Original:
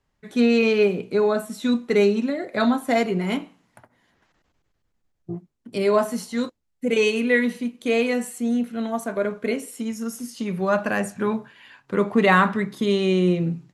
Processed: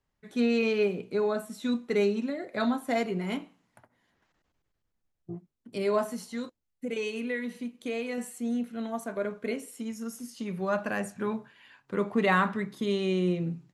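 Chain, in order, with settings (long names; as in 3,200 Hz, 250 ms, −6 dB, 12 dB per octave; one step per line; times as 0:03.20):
0:06.06–0:08.18: downward compressor 2.5 to 1, threshold −24 dBFS, peak gain reduction 7 dB
level −7.5 dB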